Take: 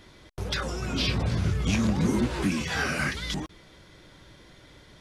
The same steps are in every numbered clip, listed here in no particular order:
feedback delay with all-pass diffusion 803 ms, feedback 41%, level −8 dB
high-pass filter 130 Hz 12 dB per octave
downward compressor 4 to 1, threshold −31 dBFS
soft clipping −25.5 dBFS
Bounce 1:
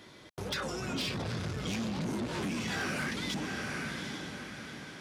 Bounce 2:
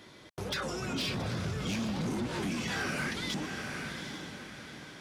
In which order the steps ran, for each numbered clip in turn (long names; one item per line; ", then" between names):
feedback delay with all-pass diffusion, then soft clipping, then high-pass filter, then downward compressor
high-pass filter, then soft clipping, then feedback delay with all-pass diffusion, then downward compressor